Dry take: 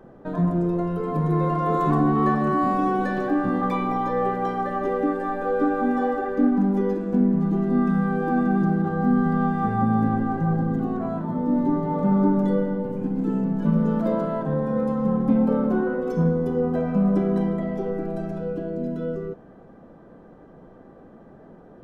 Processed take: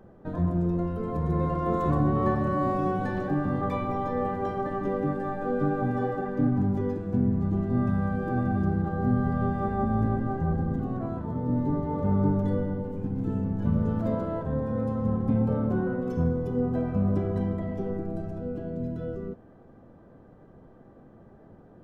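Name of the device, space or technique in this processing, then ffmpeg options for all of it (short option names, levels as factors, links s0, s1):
octave pedal: -filter_complex "[0:a]asettb=1/sr,asplit=3[s0][s1][s2];[s0]atrim=end=17.974[s3];[s1]atrim=start=17.97:end=18.55,asetpts=PTS-STARTPTS,afade=t=in:d=0.004:c=qsin,afade=t=out:st=0.576:d=0.004:c=qsin,equalizer=f=2900:w=0.6:g=-4.5[s4];[s2]atrim=start=18.546[s5];[s3][s4]acrossfade=d=0.004:c1=hsin:c2=qsin[s6];[s6][s5]acrossfade=d=0.004:c1=qsin:c2=hsin,asplit=2[s7][s8];[s8]asetrate=22050,aresample=44100,atempo=2,volume=0.794[s9];[s7][s9]amix=inputs=2:normalize=0,volume=0.473"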